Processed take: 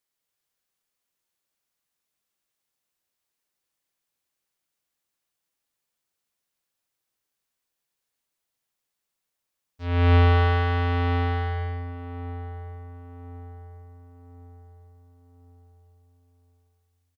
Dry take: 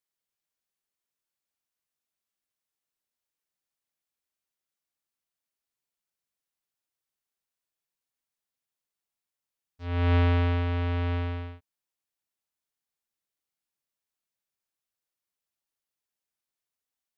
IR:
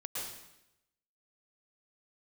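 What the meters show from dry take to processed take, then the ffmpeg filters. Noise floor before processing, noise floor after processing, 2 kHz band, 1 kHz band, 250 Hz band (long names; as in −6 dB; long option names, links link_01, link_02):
below −85 dBFS, −83 dBFS, +7.0 dB, +9.0 dB, +2.0 dB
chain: -filter_complex "[0:a]asplit=2[link_01][link_02];[link_02]adelay=1069,lowpass=frequency=1200:poles=1,volume=-12.5dB,asplit=2[link_03][link_04];[link_04]adelay=1069,lowpass=frequency=1200:poles=1,volume=0.48,asplit=2[link_05][link_06];[link_06]adelay=1069,lowpass=frequency=1200:poles=1,volume=0.48,asplit=2[link_07][link_08];[link_08]adelay=1069,lowpass=frequency=1200:poles=1,volume=0.48,asplit=2[link_09][link_10];[link_10]adelay=1069,lowpass=frequency=1200:poles=1,volume=0.48[link_11];[link_01][link_03][link_05][link_07][link_09][link_11]amix=inputs=6:normalize=0,asplit=2[link_12][link_13];[1:a]atrim=start_sample=2205,adelay=112[link_14];[link_13][link_14]afir=irnorm=-1:irlink=0,volume=-4.5dB[link_15];[link_12][link_15]amix=inputs=2:normalize=0,volume=5dB"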